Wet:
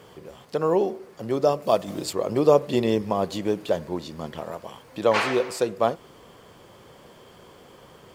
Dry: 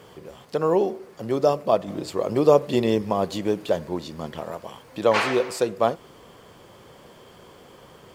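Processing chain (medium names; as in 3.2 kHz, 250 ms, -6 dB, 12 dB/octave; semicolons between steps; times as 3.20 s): 1.62–2.13 s: treble shelf 3.8 kHz +11 dB; trim -1 dB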